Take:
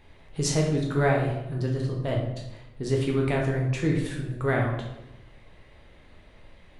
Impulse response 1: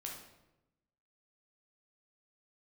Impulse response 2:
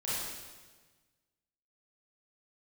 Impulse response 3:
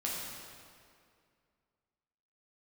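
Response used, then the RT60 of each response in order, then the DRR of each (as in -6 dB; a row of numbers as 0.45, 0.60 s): 1; 0.95, 1.4, 2.2 s; -1.5, -10.0, -5.0 dB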